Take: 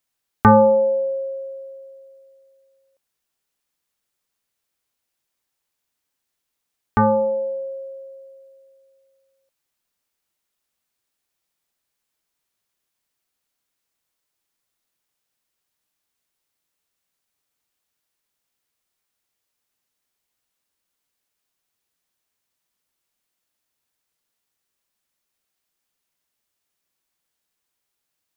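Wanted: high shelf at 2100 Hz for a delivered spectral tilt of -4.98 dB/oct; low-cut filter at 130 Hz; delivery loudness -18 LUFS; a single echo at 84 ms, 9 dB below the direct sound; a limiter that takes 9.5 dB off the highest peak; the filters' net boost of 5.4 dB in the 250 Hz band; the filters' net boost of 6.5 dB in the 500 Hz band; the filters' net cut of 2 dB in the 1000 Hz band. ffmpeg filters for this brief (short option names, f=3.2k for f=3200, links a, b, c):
-af "highpass=130,equalizer=f=250:t=o:g=6,equalizer=f=500:t=o:g=7,equalizer=f=1k:t=o:g=-6,highshelf=f=2.1k:g=5.5,alimiter=limit=-7.5dB:level=0:latency=1,aecho=1:1:84:0.355,volume=0.5dB"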